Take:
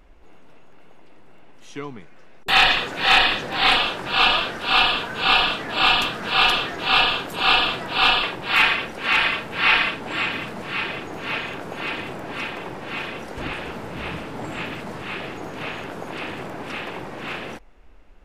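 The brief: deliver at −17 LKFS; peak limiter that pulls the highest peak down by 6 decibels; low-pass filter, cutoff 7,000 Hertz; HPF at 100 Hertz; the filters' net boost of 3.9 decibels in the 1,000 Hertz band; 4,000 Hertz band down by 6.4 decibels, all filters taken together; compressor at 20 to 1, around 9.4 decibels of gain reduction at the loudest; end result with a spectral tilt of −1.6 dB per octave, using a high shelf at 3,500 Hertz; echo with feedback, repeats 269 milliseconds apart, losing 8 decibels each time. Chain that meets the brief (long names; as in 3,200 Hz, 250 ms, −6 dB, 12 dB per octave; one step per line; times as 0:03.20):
high-pass filter 100 Hz
low-pass filter 7,000 Hz
parametric band 1,000 Hz +6 dB
high-shelf EQ 3,500 Hz −6 dB
parametric band 4,000 Hz −5.5 dB
downward compressor 20 to 1, threshold −21 dBFS
brickwall limiter −17.5 dBFS
repeating echo 269 ms, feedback 40%, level −8 dB
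level +10.5 dB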